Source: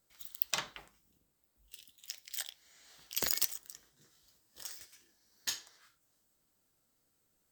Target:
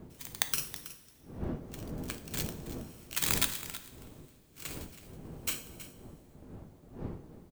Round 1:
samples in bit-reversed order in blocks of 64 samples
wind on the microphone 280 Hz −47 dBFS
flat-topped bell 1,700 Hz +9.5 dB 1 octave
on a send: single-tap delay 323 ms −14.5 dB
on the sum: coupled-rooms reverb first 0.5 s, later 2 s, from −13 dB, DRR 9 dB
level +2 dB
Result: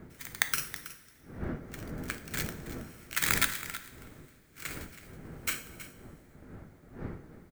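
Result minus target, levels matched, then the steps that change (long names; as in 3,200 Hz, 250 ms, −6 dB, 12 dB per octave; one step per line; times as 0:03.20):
2,000 Hz band +6.5 dB
remove: flat-topped bell 1,700 Hz +9.5 dB 1 octave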